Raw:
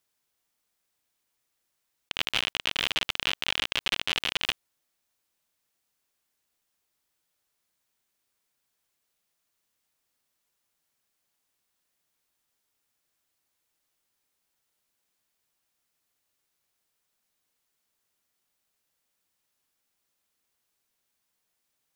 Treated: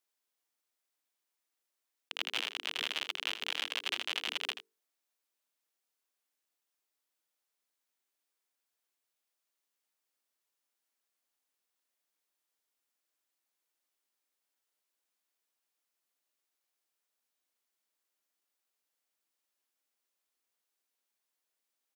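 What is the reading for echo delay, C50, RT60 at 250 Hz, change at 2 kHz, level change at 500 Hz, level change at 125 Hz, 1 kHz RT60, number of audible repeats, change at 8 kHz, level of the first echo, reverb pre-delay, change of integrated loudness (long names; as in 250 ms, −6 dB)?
82 ms, no reverb audible, no reverb audible, −7.0 dB, −7.5 dB, below −25 dB, no reverb audible, 1, −7.0 dB, −11.5 dB, no reverb audible, −7.5 dB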